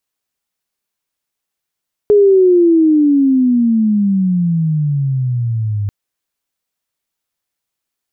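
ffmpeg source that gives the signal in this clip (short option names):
-f lavfi -i "aevalsrc='pow(10,(-5-10*t/3.79)/20)*sin(2*PI*420*3.79/log(100/420)*(exp(log(100/420)*t/3.79)-1))':d=3.79:s=44100"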